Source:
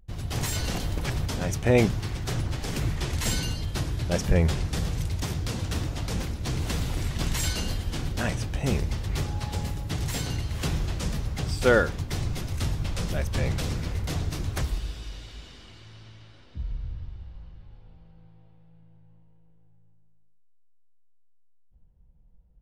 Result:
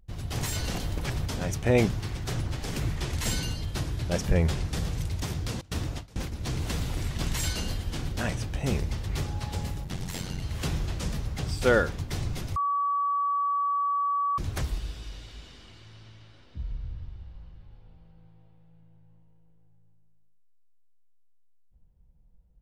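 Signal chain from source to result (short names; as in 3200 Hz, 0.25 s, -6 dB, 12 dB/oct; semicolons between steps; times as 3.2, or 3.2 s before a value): 5.61–6.32 gate with hold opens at -20 dBFS; 9.84–10.42 ring modulator 45 Hz; 12.56–14.38 bleep 1140 Hz -21.5 dBFS; gain -2 dB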